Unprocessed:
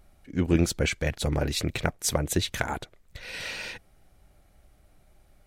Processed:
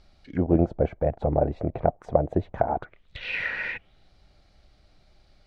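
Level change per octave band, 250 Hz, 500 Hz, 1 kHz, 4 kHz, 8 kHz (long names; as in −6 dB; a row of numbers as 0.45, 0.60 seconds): +1.5 dB, +6.5 dB, +7.0 dB, −11.5 dB, below −30 dB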